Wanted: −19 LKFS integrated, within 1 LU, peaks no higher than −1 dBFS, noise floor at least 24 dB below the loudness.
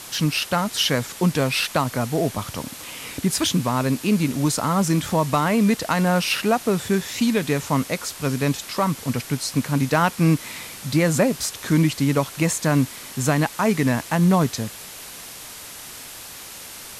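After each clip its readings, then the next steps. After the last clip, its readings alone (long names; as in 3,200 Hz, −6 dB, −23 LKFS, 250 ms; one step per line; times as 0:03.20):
background noise floor −39 dBFS; target noise floor −46 dBFS; integrated loudness −21.5 LKFS; sample peak −7.0 dBFS; target loudness −19.0 LKFS
→ broadband denoise 7 dB, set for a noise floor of −39 dBFS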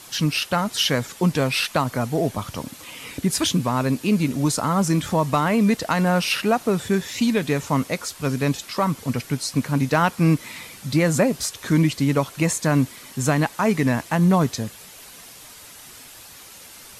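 background noise floor −44 dBFS; target noise floor −46 dBFS
→ broadband denoise 6 dB, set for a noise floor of −44 dBFS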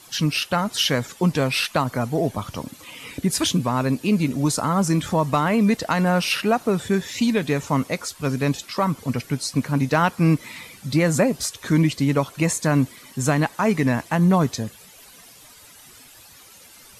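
background noise floor −47 dBFS; integrated loudness −22.0 LKFS; sample peak −7.5 dBFS; target loudness −19.0 LKFS
→ level +3 dB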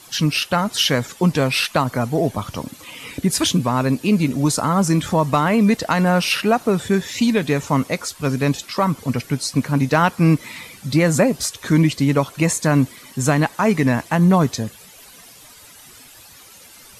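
integrated loudness −19.0 LKFS; sample peak −4.5 dBFS; background noise floor −45 dBFS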